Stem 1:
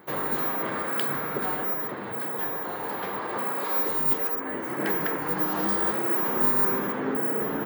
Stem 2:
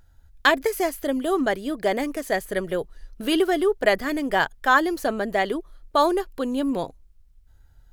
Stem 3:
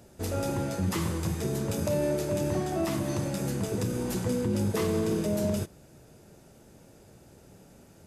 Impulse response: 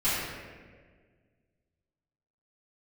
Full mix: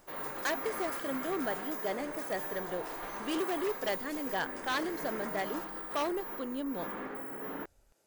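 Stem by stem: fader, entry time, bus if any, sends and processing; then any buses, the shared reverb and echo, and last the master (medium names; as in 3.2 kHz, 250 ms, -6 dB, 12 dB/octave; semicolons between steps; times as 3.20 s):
-15.0 dB, 0.00 s, send -9.5 dB, compressor with a negative ratio -28 dBFS, ratio -0.5
-12.5 dB, 0.00 s, no send, bass shelf 320 Hz +8 dB
-5.0 dB, 0.00 s, no send, tone controls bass -13 dB, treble +2 dB; auto duck -10 dB, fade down 0.25 s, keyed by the second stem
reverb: on, RT60 1.6 s, pre-delay 3 ms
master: wavefolder -24 dBFS; bass shelf 210 Hz -11 dB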